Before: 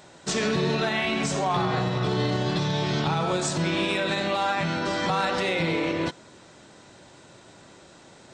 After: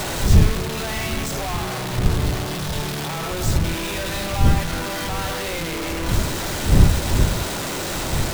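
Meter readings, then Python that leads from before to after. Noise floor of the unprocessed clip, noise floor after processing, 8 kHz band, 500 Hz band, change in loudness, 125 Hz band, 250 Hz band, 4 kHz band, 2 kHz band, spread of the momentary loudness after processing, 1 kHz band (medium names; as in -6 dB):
-51 dBFS, -27 dBFS, +8.0 dB, -0.5 dB, +3.0 dB, +9.0 dB, +2.5 dB, +3.0 dB, +1.0 dB, 9 LU, -0.5 dB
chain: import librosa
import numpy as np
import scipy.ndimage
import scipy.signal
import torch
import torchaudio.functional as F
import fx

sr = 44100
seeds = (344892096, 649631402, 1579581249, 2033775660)

y = np.sign(x) * np.sqrt(np.mean(np.square(x)))
y = fx.dmg_wind(y, sr, seeds[0], corner_hz=100.0, level_db=-21.0)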